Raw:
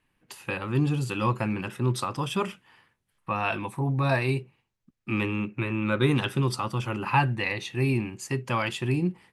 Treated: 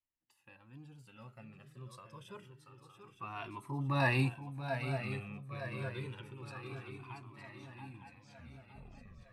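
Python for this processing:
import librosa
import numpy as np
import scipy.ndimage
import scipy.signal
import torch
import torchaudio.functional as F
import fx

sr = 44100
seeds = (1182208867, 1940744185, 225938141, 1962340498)

y = fx.tape_stop_end(x, sr, length_s=1.42)
y = fx.doppler_pass(y, sr, speed_mps=8, closest_m=1.6, pass_at_s=4.19)
y = fx.echo_swing(y, sr, ms=911, ratio=3, feedback_pct=52, wet_db=-8.5)
y = fx.comb_cascade(y, sr, direction='falling', hz=0.27)
y = y * librosa.db_to_amplitude(1.5)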